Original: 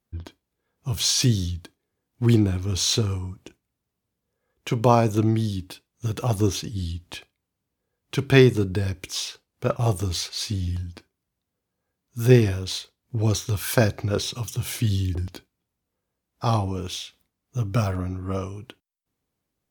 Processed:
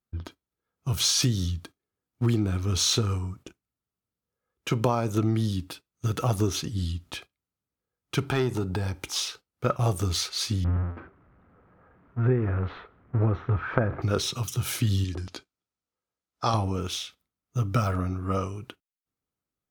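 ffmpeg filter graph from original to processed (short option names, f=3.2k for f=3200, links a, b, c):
-filter_complex "[0:a]asettb=1/sr,asplit=3[a][b][c];[a]atrim=end=8.234[d];[b]atrim=start=8.23:end=9.16,asetpts=PTS-STARTPTS,afade=t=in:d=0.004:c=qsin,afade=t=out:st=0.926:d=0.004:c=qsin,equalizer=f=830:w=3.5:g=12,acompressor=threshold=-27dB:ratio=2:attack=3.2:release=140:knee=1:detection=peak,asoftclip=type=hard:threshold=-17dB[e];[c]atrim=start=9.156[f];[d][e]acrossfade=d=0.004:c1=hsin:c2=qsin[g];[g][f]acrossfade=d=0.004:c1=qsin:c2=hsin,asettb=1/sr,asplit=3[h][i][j];[h]atrim=end=10.644[k];[i]atrim=start=10.64:end=14.02,asetpts=PTS-STARTPTS,afade=t=in:d=0.004:c=qsin,afade=t=out:st=3.376:d=0.004:c=qsin,aeval=exprs='val(0)+0.5*0.0422*sgn(val(0))':c=same,agate=range=-33dB:threshold=-27dB:ratio=3:release=100:detection=peak,lowpass=f=1.8k:w=0.5412,lowpass=f=1.8k:w=1.3066[l];[j]atrim=start=14.016[m];[k][l]acrossfade=d=0.004:c1=hsin:c2=qsin[n];[n][m]acrossfade=d=0.004:c1=qsin:c2=hsin,asettb=1/sr,asplit=3[o][p][q];[o]atrim=end=15.044[r];[p]atrim=start=15.04:end=16.54,asetpts=PTS-STARTPTS,afade=t=in:d=0.004:c=qsin,afade=t=out:st=1.496:d=0.004:c=qsin,lowpass=6.2k,bass=f=250:g=-7,treble=f=4k:g=7[s];[q]atrim=start=16.536[t];[r][s]acrossfade=d=0.004:c1=hsin:c2=qsin[u];[u][t]acrossfade=d=0.004:c1=qsin:c2=hsin,agate=range=-10dB:threshold=-45dB:ratio=16:detection=peak,equalizer=f=1.3k:w=6.2:g=8.5,acompressor=threshold=-19dB:ratio=12"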